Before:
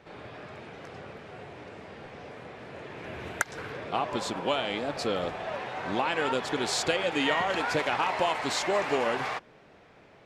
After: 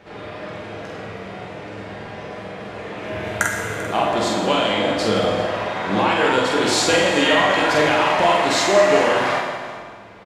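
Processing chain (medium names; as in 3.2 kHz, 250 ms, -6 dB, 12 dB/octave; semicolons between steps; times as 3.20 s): doubling 46 ms -4 dB; delay 392 ms -17.5 dB; reverberation RT60 1.8 s, pre-delay 5 ms, DRR -0.5 dB; trim +6 dB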